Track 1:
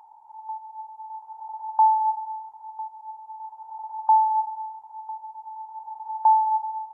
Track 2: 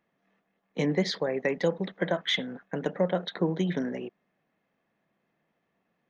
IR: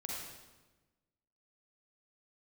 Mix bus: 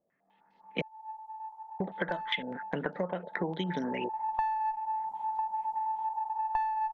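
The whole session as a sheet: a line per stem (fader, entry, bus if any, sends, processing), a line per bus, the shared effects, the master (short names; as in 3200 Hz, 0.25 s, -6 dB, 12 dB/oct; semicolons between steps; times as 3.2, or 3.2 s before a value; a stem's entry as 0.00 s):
3.16 s -19 dB -> 3.92 s -6 dB, 0.30 s, no send, one diode to ground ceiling -13.5 dBFS; AGC gain up to 15 dB
-8.0 dB, 0.00 s, muted 0.82–1.8, no send, AGC gain up to 15.5 dB; stepped low-pass 9.9 Hz 600–4600 Hz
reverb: off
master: compressor 6:1, threshold -30 dBFS, peak gain reduction 16.5 dB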